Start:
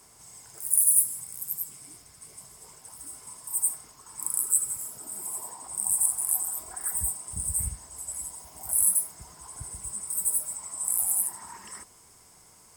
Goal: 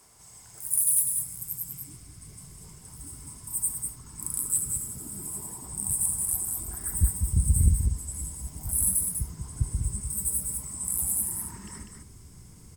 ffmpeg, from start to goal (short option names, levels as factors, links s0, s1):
-af "asubboost=boost=11.5:cutoff=210,acontrast=77,aecho=1:1:197:0.531,volume=0.355"